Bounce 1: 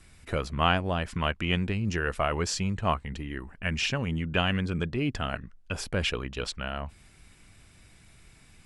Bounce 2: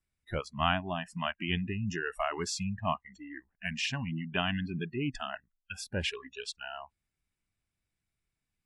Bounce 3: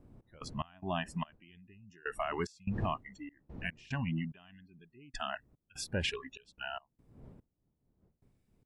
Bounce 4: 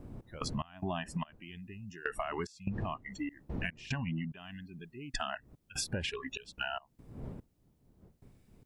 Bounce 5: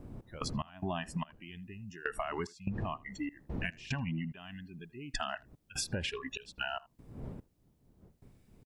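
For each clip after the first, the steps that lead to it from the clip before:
spectral noise reduction 27 dB; gain -4 dB
wind noise 200 Hz -50 dBFS; limiter -24 dBFS, peak gain reduction 10.5 dB; step gate "x.x.xx....xx.xx" 73 bpm -24 dB; gain +1 dB
compressor 12:1, threshold -43 dBFS, peak gain reduction 15 dB; gain +10.5 dB
speakerphone echo 80 ms, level -23 dB

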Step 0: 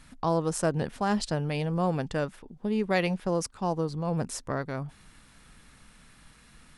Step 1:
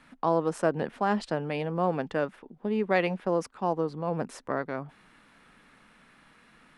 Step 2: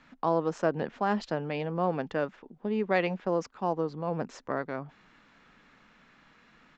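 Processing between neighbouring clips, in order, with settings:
three-band isolator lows -17 dB, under 190 Hz, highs -14 dB, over 3100 Hz; gain +2 dB
downsampling 16000 Hz; gain -1.5 dB

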